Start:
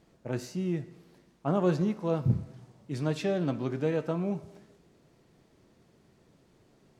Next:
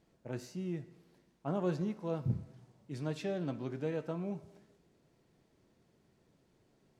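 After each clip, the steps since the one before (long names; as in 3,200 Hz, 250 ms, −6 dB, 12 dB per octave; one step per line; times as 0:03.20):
notch filter 1,200 Hz, Q 21
level −7.5 dB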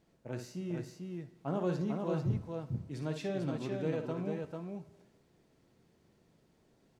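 multi-tap delay 57/445 ms −8.5/−4 dB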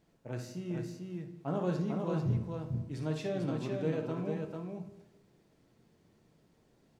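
rectangular room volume 180 cubic metres, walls mixed, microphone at 0.39 metres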